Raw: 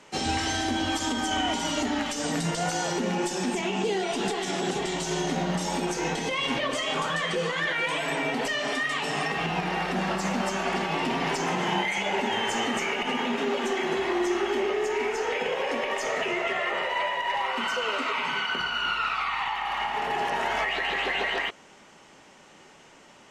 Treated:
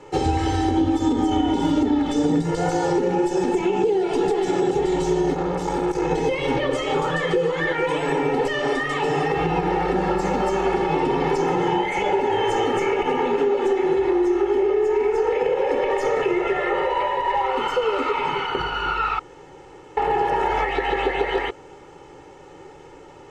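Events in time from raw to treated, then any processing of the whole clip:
0.77–2.42 s: small resonant body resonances 220/3500 Hz, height 12 dB, ringing for 20 ms
5.34–6.11 s: transformer saturation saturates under 1.3 kHz
19.19–19.97 s: room tone
whole clip: tilt shelf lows +9 dB, about 1.1 kHz; comb 2.3 ms, depth 98%; compression, threshold -20 dBFS; trim +3 dB

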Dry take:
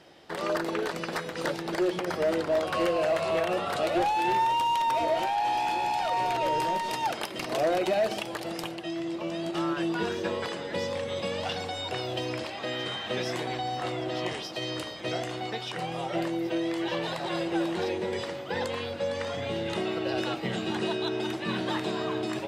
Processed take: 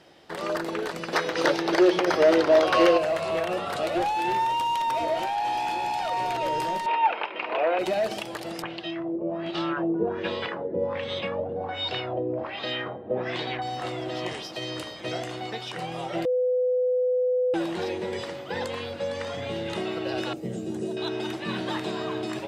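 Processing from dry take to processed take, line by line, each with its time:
1.13–2.98 s: time-frequency box 270–6600 Hz +8 dB
6.86–7.79 s: cabinet simulation 400–3000 Hz, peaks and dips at 470 Hz +5 dB, 930 Hz +9 dB, 1.4 kHz +4 dB, 2.5 kHz +10 dB
8.62–13.62 s: LFO low-pass sine 1.3 Hz 420–4200 Hz
16.25–17.54 s: bleep 502 Hz -20.5 dBFS
20.33–20.97 s: high-order bell 1.9 kHz -16 dB 2.9 oct

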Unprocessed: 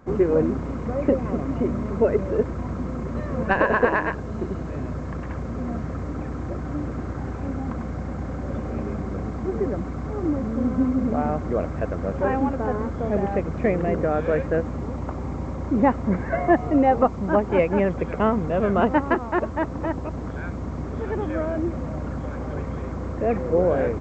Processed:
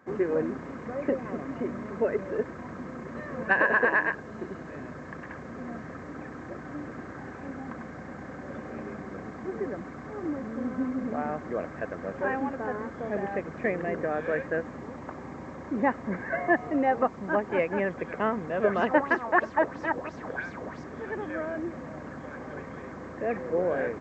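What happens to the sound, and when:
18.64–20.84 s: sweeping bell 3 Hz 470–5700 Hz +13 dB
whole clip: Bessel high-pass 210 Hz, order 2; peaking EQ 1.7 kHz +9.5 dB 0.63 oct; band-stop 1.4 kHz, Q 13; trim -6.5 dB

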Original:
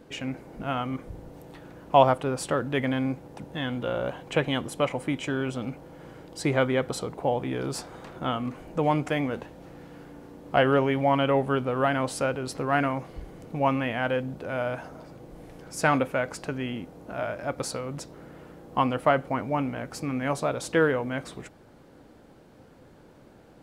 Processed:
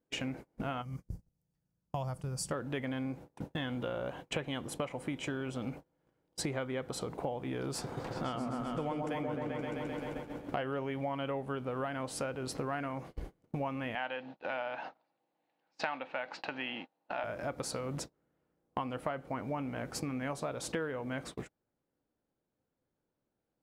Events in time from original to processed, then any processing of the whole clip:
0.82–2.51 s: time-frequency box 230–4400 Hz -15 dB
7.71–10.64 s: delay with an opening low-pass 130 ms, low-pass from 750 Hz, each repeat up 1 oct, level 0 dB
13.95–17.24 s: cabinet simulation 340–4800 Hz, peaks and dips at 420 Hz -9 dB, 840 Hz +9 dB, 1.8 kHz +5 dB, 2.7 kHz +8 dB, 4 kHz +8 dB
whole clip: gate -39 dBFS, range -35 dB; compression 6:1, threshold -37 dBFS; trim +2.5 dB

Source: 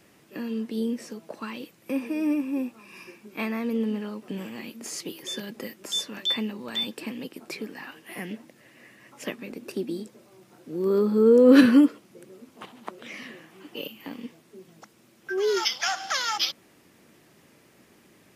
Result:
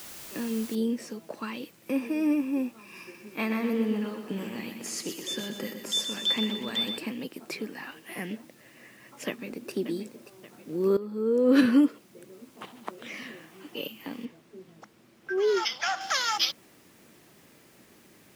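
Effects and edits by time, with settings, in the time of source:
0.75 s: noise floor step -44 dB -64 dB
3.02–6.98 s: feedback delay 123 ms, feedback 56%, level -7.5 dB
9.27–9.71 s: echo throw 580 ms, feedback 55%, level -12 dB
10.97–12.99 s: fade in equal-power, from -17 dB
14.25–16.01 s: treble shelf 4.9 kHz -11 dB

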